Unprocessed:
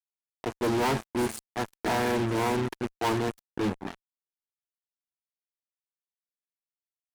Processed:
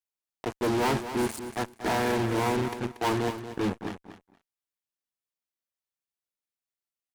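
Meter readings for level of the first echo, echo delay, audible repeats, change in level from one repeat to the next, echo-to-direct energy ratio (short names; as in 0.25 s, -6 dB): -11.0 dB, 0.234 s, 2, -15.0 dB, -11.0 dB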